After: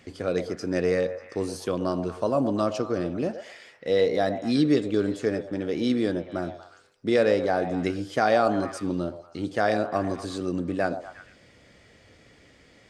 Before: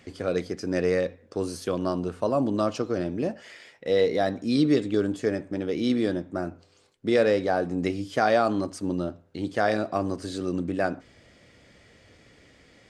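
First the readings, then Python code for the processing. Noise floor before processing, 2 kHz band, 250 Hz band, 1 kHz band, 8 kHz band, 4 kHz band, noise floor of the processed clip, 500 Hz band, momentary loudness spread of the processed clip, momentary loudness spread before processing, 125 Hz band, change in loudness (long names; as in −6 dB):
−58 dBFS, 0.0 dB, 0.0 dB, +0.5 dB, 0.0 dB, 0.0 dB, −56 dBFS, +0.5 dB, 11 LU, 10 LU, 0.0 dB, +0.5 dB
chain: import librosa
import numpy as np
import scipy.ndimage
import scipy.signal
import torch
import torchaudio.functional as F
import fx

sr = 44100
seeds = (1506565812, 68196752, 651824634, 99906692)

y = fx.echo_stepped(x, sr, ms=118, hz=630.0, octaves=0.7, feedback_pct=70, wet_db=-8)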